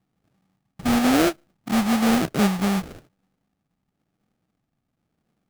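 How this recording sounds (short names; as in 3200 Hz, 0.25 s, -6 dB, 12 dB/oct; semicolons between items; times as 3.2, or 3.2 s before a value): phasing stages 12, 1 Hz, lowest notch 470–1100 Hz; aliases and images of a low sample rate 1000 Hz, jitter 20%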